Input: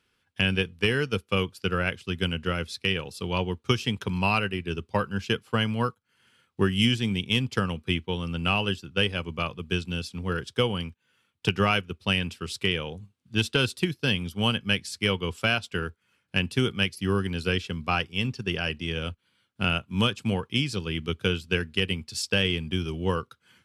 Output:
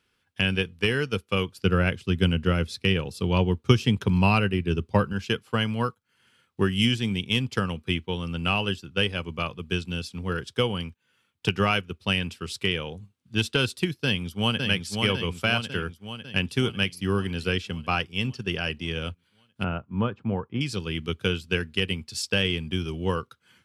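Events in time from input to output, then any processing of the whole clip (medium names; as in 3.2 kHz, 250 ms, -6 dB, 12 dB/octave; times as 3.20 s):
1.56–5.13 s: bass shelf 440 Hz +8 dB
14.04–14.65 s: echo throw 550 ms, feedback 60%, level -4 dB
19.64–20.61 s: Chebyshev low-pass 1.1 kHz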